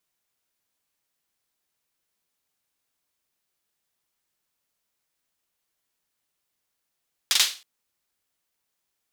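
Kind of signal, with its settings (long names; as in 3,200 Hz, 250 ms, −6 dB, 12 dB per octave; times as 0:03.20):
synth clap length 0.32 s, bursts 3, apart 43 ms, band 3,800 Hz, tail 0.33 s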